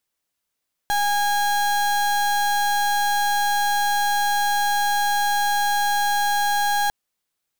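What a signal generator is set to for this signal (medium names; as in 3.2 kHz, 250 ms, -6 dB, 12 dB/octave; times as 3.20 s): pulse 820 Hz, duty 32% -20.5 dBFS 6.00 s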